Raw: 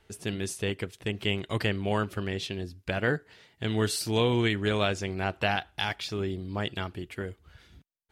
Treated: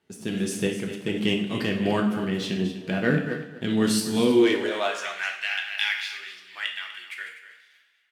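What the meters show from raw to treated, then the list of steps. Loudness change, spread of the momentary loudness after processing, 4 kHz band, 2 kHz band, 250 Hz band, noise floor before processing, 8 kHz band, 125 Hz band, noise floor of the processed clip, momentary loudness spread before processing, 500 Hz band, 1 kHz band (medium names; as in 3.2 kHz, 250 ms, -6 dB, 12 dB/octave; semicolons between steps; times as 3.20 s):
+4.5 dB, 13 LU, +3.0 dB, +4.0 dB, +7.5 dB, -66 dBFS, +3.5 dB, -1.0 dB, -60 dBFS, 10 LU, +4.0 dB, -0.5 dB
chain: chunks repeated in reverse 160 ms, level -11.5 dB; tone controls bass +4 dB, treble 0 dB; waveshaping leveller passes 1; tremolo saw up 1.5 Hz, depth 55%; two-slope reverb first 0.6 s, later 4 s, from -28 dB, DRR 2 dB; high-pass sweep 200 Hz -> 2 kHz, 4.20–5.30 s; on a send: delay 247 ms -13.5 dB; on the sum: trim -1.5 dB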